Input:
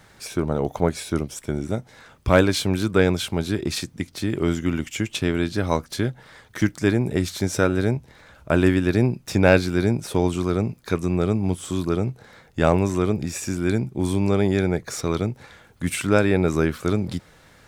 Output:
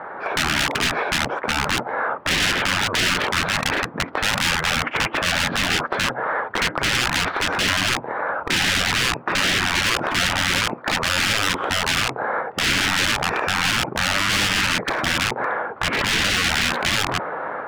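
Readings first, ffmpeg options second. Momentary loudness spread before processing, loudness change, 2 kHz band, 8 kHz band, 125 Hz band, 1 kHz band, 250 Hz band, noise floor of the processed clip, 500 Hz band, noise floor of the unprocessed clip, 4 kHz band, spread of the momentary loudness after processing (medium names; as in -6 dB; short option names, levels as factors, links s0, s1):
10 LU, +3.0 dB, +11.0 dB, +8.5 dB, -7.0 dB, +8.5 dB, -8.0 dB, -35 dBFS, -6.0 dB, -53 dBFS, +14.0 dB, 5 LU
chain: -af "aeval=exprs='(mod(11.2*val(0)+1,2)-1)/11.2':c=same,lowpass=f=1300:w=0.5412,lowpass=f=1300:w=1.3066,apsyclip=15,highpass=610,acontrast=68,asoftclip=type=hard:threshold=0.266,dynaudnorm=f=200:g=3:m=2,afftfilt=real='re*lt(hypot(re,im),0.708)':imag='im*lt(hypot(re,im),0.708)':win_size=1024:overlap=0.75,volume=0.631"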